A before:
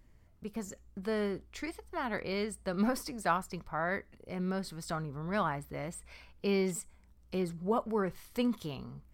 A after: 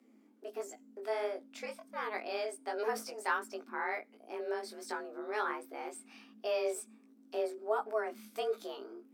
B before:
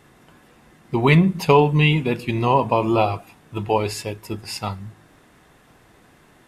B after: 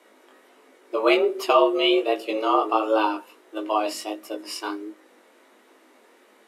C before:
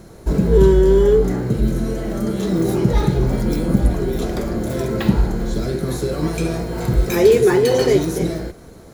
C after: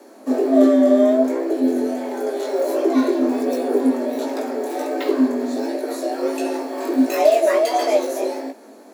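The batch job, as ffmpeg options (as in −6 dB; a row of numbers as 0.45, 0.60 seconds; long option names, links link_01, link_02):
-af "flanger=delay=16.5:depth=6.2:speed=1.4,afreqshift=210"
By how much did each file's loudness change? −3.0, −3.5, −1.5 LU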